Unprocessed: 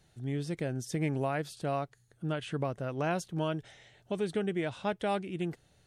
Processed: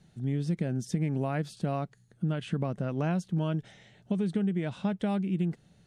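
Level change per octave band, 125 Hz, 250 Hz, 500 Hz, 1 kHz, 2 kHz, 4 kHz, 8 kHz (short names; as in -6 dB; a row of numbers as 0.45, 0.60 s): +6.0 dB, +5.5 dB, -2.0 dB, -3.0 dB, -3.5 dB, -2.5 dB, n/a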